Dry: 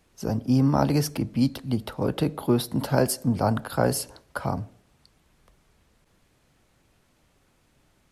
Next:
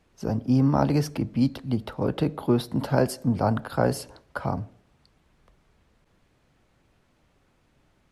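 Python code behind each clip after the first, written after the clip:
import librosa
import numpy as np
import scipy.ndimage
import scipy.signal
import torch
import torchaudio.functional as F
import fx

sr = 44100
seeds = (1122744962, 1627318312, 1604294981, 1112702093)

y = fx.lowpass(x, sr, hz=3400.0, slope=6)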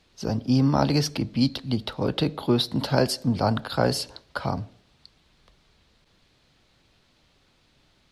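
y = fx.peak_eq(x, sr, hz=4100.0, db=13.5, octaves=1.2)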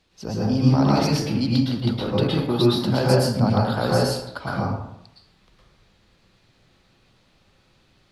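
y = fx.rev_plate(x, sr, seeds[0], rt60_s=0.75, hf_ratio=0.5, predelay_ms=100, drr_db=-5.5)
y = y * 10.0 ** (-3.5 / 20.0)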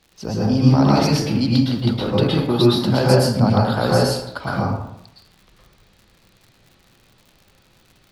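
y = fx.dmg_crackle(x, sr, seeds[1], per_s=120.0, level_db=-43.0)
y = y * 10.0 ** (3.5 / 20.0)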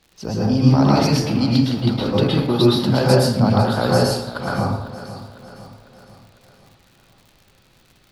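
y = fx.echo_feedback(x, sr, ms=502, feedback_pct=50, wet_db=-14.5)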